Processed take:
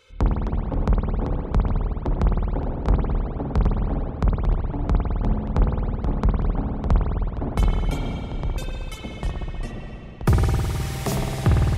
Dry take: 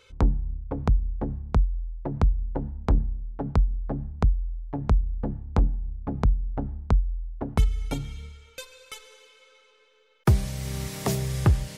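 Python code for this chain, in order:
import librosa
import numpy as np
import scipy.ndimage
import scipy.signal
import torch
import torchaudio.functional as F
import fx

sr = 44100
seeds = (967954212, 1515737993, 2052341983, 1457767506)

y = fx.rev_spring(x, sr, rt60_s=2.6, pass_ms=(52,), chirp_ms=25, drr_db=-2.5)
y = fx.echo_pitch(y, sr, ms=223, semitones=-3, count=2, db_per_echo=-6.0)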